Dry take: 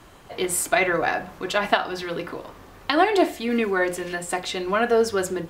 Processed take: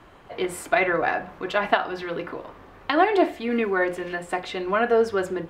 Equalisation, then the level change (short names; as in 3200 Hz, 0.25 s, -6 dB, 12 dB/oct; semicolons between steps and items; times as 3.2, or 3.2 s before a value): tone controls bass -3 dB, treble -14 dB; 0.0 dB